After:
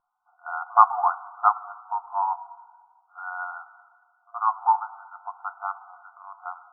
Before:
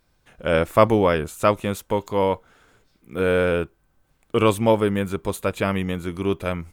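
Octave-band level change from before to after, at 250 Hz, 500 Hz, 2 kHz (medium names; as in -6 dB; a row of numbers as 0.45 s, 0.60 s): under -40 dB, -22.0 dB, -8.0 dB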